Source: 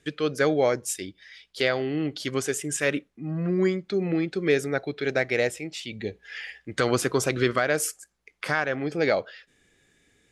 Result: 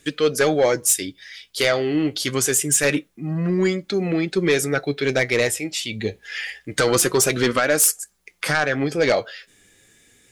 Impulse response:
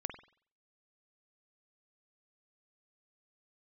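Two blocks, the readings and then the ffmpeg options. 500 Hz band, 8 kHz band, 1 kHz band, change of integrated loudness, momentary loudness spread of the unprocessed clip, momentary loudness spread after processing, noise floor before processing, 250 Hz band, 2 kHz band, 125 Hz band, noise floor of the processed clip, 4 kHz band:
+4.5 dB, +12.5 dB, +4.5 dB, +6.0 dB, 12 LU, 12 LU, -69 dBFS, +4.5 dB, +5.0 dB, +4.5 dB, -61 dBFS, +8.5 dB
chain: -af "aemphasis=mode=production:type=50kf,flanger=delay=3.4:depth=6.7:regen=57:speed=0.26:shape=triangular,aeval=exprs='0.299*sin(PI/2*2*val(0)/0.299)':c=same"

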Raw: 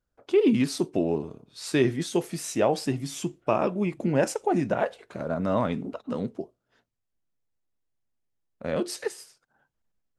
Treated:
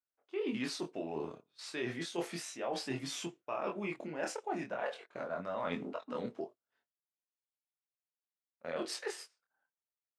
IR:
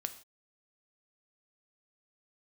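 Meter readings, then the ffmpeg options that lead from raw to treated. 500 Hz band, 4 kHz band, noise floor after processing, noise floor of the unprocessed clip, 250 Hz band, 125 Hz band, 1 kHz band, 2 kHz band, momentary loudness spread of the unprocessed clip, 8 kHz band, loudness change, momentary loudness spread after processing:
-12.5 dB, -5.5 dB, under -85 dBFS, -81 dBFS, -14.5 dB, -17.0 dB, -10.0 dB, -6.5 dB, 11 LU, -9.0 dB, -12.5 dB, 7 LU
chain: -af "agate=range=0.141:threshold=0.00794:ratio=16:detection=peak,highpass=f=1400:p=1,aemphasis=mode=reproduction:type=75fm,areverse,acompressor=threshold=0.00891:ratio=6,areverse,flanger=delay=22.5:depth=2.9:speed=0.37,volume=2.99"

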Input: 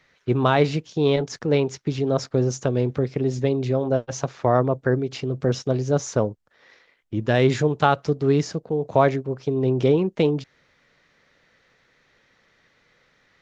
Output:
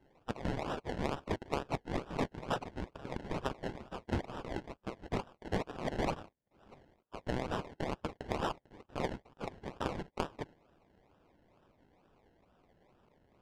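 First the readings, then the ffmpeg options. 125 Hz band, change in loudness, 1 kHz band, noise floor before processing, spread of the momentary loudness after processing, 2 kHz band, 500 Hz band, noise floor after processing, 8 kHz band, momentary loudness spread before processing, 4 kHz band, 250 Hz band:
-19.0 dB, -17.0 dB, -13.0 dB, -63 dBFS, 9 LU, -13.0 dB, -19.0 dB, -75 dBFS, no reading, 7 LU, -13.0 dB, -16.5 dB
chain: -af "aeval=exprs='if(lt(val(0),0),0.447*val(0),val(0))':c=same,afftfilt=real='re*between(b*sr/4096,2000,6200)':imag='im*between(b*sr/4096,2000,6200)':win_size=4096:overlap=0.75,agate=range=0.447:threshold=0.00112:ratio=16:detection=peak,aderivative,alimiter=level_in=2.11:limit=0.0631:level=0:latency=1:release=269,volume=0.473,acompressor=threshold=0.00447:ratio=5,acrusher=samples=29:mix=1:aa=0.000001:lfo=1:lforange=17.4:lforate=2.2,aeval=exprs='0.0224*(cos(1*acos(clip(val(0)/0.0224,-1,1)))-cos(1*PI/2))+0.000501*(cos(3*acos(clip(val(0)/0.0224,-1,1)))-cos(3*PI/2))+0.000251*(cos(8*acos(clip(val(0)/0.0224,-1,1)))-cos(8*PI/2))':c=same,adynamicsmooth=sensitivity=7:basefreq=3900,volume=7.5"

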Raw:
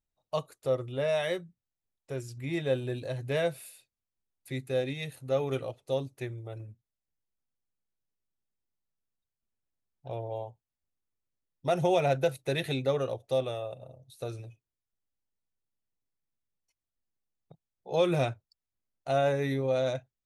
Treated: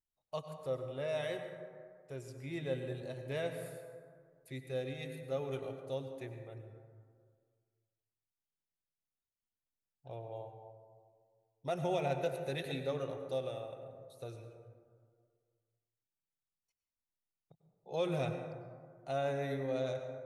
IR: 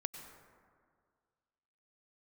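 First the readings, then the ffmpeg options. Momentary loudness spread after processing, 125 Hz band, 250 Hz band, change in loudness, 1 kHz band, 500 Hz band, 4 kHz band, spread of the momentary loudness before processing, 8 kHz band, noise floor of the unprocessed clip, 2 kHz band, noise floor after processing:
16 LU, -7.5 dB, -7.5 dB, -8.5 dB, -8.0 dB, -8.0 dB, -8.5 dB, 17 LU, -8.5 dB, under -85 dBFS, -8.0 dB, under -85 dBFS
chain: -filter_complex "[1:a]atrim=start_sample=2205[s0];[0:a][s0]afir=irnorm=-1:irlink=0,volume=0.447"

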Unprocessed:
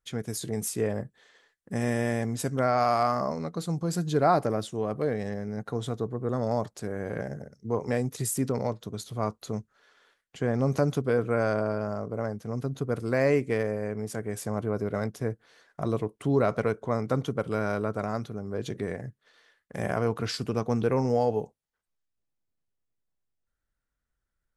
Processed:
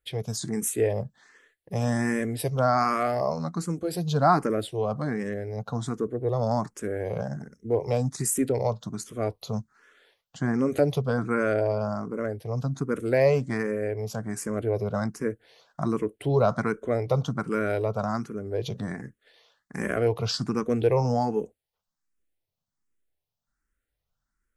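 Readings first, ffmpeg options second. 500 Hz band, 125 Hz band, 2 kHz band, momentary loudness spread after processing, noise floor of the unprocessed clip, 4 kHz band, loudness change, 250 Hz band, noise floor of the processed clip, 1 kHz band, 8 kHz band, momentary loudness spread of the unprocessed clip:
+2.0 dB, +2.0 dB, +2.0 dB, 10 LU, -83 dBFS, +3.0 dB, +2.0 dB, +1.5 dB, -85 dBFS, +1.5 dB, +3.5 dB, 10 LU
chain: -filter_complex "[0:a]asplit=2[s0][s1];[s1]afreqshift=1.3[s2];[s0][s2]amix=inputs=2:normalize=1,volume=1.78"

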